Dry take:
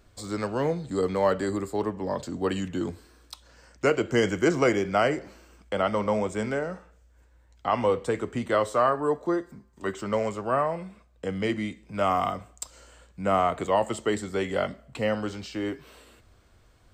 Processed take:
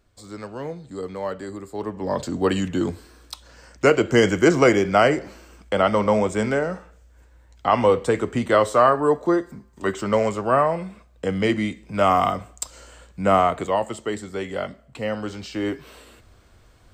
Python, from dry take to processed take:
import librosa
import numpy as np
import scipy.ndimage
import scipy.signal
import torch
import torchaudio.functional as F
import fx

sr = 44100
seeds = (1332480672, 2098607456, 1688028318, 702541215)

y = fx.gain(x, sr, db=fx.line((1.63, -5.5), (2.19, 6.5), (13.32, 6.5), (13.94, -1.0), (15.0, -1.0), (15.71, 5.5)))